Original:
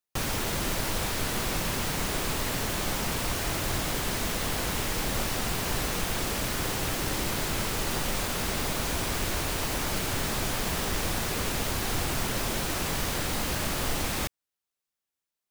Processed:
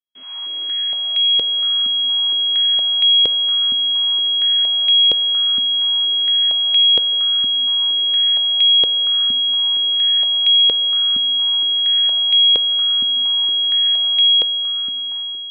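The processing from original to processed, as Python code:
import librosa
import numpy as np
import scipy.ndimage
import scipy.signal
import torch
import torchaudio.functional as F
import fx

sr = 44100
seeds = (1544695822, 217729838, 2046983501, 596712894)

y = fx.envelope_flatten(x, sr, power=0.1)
y = 10.0 ** (-25.5 / 20.0) * np.tanh(y / 10.0 ** (-25.5 / 20.0))
y = fx.resonator_bank(y, sr, root=42, chord='fifth', decay_s=0.42)
y = np.abs(y)
y = y + 10.0 ** (-6.5 / 20.0) * np.pad(y, (int(935 * sr / 1000.0), 0))[:len(y)]
y = fx.rev_schroeder(y, sr, rt60_s=3.0, comb_ms=31, drr_db=2.5)
y = fx.freq_invert(y, sr, carrier_hz=3300)
y = fx.filter_held_highpass(y, sr, hz=4.3, low_hz=250.0, high_hz=2400.0)
y = F.gain(torch.from_numpy(y), 4.5).numpy()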